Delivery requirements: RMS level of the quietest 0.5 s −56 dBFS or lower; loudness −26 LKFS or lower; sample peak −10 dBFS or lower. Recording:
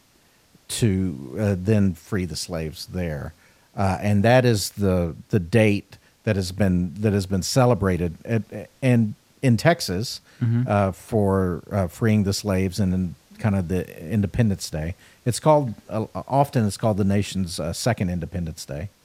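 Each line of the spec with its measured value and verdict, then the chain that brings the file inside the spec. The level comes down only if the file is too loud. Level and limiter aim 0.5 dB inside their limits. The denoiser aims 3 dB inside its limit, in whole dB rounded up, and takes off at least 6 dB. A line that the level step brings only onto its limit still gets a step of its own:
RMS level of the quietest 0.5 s −58 dBFS: in spec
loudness −23.0 LKFS: out of spec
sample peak −3.5 dBFS: out of spec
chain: level −3.5 dB
brickwall limiter −10.5 dBFS

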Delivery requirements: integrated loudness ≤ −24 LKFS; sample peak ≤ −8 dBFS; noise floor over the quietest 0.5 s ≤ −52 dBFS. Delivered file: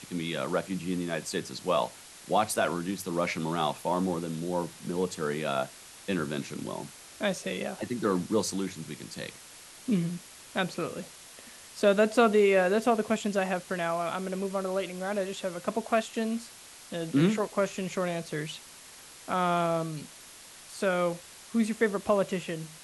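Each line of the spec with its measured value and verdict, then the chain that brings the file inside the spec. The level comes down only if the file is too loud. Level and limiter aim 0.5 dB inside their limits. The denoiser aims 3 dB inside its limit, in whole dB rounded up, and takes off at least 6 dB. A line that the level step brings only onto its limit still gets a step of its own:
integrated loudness −30.0 LKFS: in spec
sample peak −11.5 dBFS: in spec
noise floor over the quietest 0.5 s −50 dBFS: out of spec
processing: broadband denoise 6 dB, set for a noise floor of −50 dBFS

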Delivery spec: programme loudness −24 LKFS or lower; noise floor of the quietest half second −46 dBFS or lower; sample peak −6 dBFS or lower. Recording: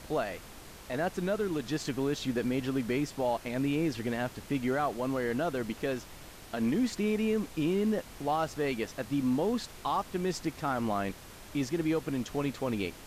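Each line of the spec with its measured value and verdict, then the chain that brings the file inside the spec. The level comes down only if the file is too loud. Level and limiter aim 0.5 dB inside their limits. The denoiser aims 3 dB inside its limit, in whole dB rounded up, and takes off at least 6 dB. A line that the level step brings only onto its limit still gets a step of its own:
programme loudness −32.0 LKFS: in spec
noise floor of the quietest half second −48 dBFS: in spec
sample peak −19.5 dBFS: in spec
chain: no processing needed

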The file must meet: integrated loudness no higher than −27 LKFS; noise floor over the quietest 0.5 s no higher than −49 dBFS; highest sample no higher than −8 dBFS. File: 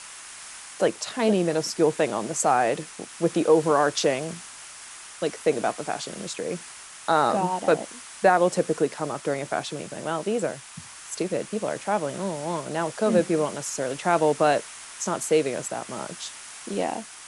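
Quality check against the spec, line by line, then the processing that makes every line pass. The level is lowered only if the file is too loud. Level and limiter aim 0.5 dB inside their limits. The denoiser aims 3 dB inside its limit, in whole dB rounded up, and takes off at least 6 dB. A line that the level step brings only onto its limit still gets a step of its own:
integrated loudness −25.5 LKFS: out of spec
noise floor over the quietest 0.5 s −43 dBFS: out of spec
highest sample −7.0 dBFS: out of spec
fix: broadband denoise 7 dB, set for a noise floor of −43 dBFS
level −2 dB

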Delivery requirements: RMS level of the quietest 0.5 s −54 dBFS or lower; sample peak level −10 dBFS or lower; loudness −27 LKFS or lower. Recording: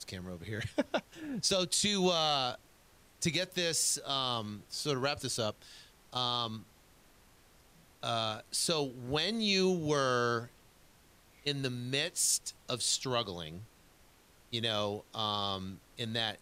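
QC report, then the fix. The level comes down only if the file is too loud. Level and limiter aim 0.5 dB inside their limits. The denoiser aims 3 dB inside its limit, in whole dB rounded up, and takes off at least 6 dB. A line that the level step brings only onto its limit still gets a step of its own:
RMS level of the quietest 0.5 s −62 dBFS: in spec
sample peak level −17.0 dBFS: in spec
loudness −32.5 LKFS: in spec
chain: no processing needed

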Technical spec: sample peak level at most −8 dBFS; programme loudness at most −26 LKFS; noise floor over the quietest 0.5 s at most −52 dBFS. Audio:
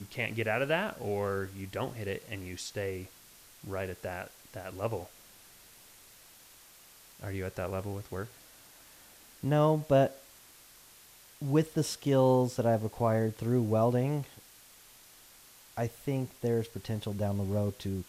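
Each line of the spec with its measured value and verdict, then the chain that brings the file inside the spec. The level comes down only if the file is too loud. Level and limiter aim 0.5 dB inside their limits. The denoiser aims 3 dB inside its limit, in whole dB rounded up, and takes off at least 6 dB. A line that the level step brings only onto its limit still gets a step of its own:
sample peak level −13.0 dBFS: in spec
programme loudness −31.5 LKFS: in spec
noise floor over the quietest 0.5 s −56 dBFS: in spec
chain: no processing needed

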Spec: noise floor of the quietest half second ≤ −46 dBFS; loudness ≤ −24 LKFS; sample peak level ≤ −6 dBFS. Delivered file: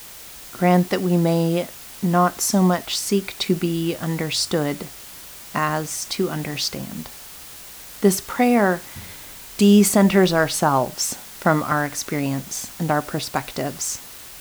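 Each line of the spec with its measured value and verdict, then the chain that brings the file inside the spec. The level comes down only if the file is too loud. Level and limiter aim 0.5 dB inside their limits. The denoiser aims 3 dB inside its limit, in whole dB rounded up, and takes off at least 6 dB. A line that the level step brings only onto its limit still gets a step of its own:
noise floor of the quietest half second −40 dBFS: out of spec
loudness −21.0 LKFS: out of spec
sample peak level −4.0 dBFS: out of spec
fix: broadband denoise 6 dB, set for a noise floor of −40 dBFS
level −3.5 dB

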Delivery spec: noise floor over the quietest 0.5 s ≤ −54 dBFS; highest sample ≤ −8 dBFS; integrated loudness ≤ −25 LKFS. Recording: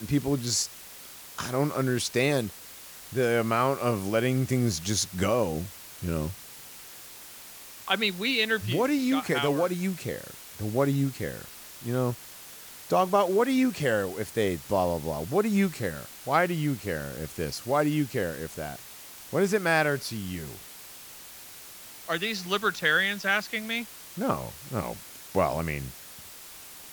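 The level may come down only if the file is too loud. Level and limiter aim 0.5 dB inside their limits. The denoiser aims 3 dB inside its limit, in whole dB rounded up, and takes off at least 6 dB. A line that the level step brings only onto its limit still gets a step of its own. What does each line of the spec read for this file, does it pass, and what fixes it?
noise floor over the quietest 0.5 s −46 dBFS: out of spec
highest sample −9.5 dBFS: in spec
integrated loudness −27.5 LKFS: in spec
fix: broadband denoise 11 dB, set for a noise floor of −46 dBFS

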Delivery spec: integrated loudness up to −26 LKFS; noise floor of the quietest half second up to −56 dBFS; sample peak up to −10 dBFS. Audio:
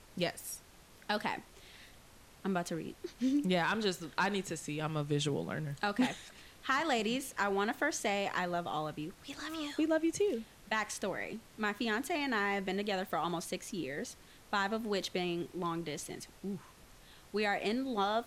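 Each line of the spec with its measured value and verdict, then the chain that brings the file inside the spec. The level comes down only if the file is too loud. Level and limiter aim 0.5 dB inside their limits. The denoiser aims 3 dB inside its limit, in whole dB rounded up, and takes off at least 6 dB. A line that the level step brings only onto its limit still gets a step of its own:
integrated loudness −35.5 LKFS: in spec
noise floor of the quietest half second −58 dBFS: in spec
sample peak −16.5 dBFS: in spec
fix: no processing needed

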